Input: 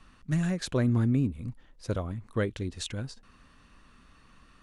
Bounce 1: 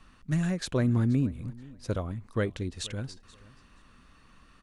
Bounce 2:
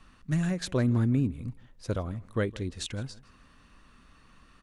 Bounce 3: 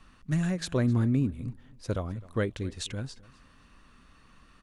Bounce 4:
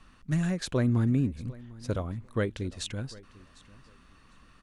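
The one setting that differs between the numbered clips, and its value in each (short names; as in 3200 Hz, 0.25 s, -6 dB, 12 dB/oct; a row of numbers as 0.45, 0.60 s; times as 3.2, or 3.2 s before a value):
feedback echo, time: 0.478, 0.162, 0.259, 0.749 s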